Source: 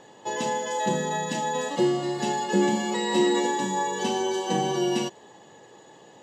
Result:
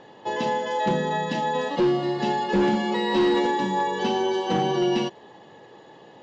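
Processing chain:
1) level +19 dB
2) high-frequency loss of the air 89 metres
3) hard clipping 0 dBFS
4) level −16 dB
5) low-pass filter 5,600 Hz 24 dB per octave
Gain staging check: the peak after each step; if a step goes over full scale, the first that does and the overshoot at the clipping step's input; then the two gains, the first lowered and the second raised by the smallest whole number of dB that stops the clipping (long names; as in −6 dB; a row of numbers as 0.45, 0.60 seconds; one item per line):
+9.0, +8.5, 0.0, −16.0, −15.5 dBFS
step 1, 8.5 dB
step 1 +10 dB, step 4 −7 dB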